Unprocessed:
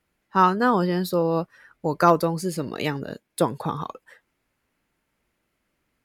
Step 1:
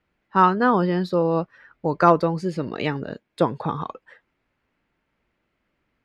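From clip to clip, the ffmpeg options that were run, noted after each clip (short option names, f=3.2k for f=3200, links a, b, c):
-af "lowpass=3.5k,volume=1.5dB"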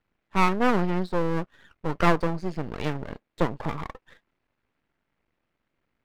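-af "highshelf=f=5.3k:g=-12,aeval=exprs='max(val(0),0)':c=same"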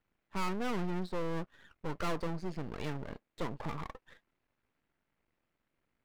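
-af "aeval=exprs='(tanh(7.08*val(0)+0.75)-tanh(0.75))/7.08':c=same"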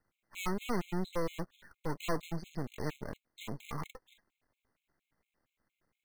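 -filter_complex "[0:a]acrossover=split=460|4300[a][b][c];[b]acrusher=bits=2:mode=log:mix=0:aa=0.000001[d];[a][d][c]amix=inputs=3:normalize=0,afftfilt=real='re*gt(sin(2*PI*4.3*pts/sr)*(1-2*mod(floor(b*sr/1024/2100),2)),0)':imag='im*gt(sin(2*PI*4.3*pts/sr)*(1-2*mod(floor(b*sr/1024/2100),2)),0)':win_size=1024:overlap=0.75,volume=2.5dB"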